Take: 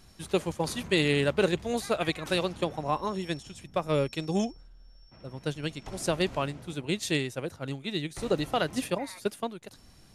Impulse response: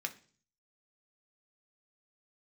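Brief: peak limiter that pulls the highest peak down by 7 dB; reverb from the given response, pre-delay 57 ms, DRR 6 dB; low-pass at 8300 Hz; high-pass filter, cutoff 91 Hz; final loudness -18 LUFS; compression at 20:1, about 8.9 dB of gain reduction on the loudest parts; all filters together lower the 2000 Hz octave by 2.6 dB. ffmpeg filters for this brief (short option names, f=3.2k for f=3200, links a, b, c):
-filter_complex "[0:a]highpass=91,lowpass=8.3k,equalizer=f=2k:t=o:g=-3.5,acompressor=threshold=-29dB:ratio=20,alimiter=level_in=1dB:limit=-24dB:level=0:latency=1,volume=-1dB,asplit=2[a][b];[1:a]atrim=start_sample=2205,adelay=57[c];[b][c]afir=irnorm=-1:irlink=0,volume=-7dB[d];[a][d]amix=inputs=2:normalize=0,volume=19.5dB"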